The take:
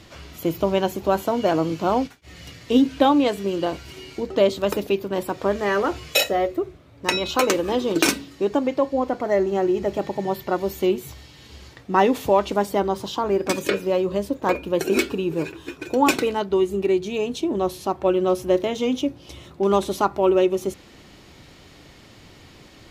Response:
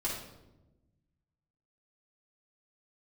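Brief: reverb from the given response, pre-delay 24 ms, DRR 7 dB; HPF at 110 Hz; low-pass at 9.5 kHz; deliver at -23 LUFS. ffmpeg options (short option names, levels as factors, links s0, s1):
-filter_complex "[0:a]highpass=110,lowpass=9500,asplit=2[s0][s1];[1:a]atrim=start_sample=2205,adelay=24[s2];[s1][s2]afir=irnorm=-1:irlink=0,volume=0.266[s3];[s0][s3]amix=inputs=2:normalize=0,volume=0.841"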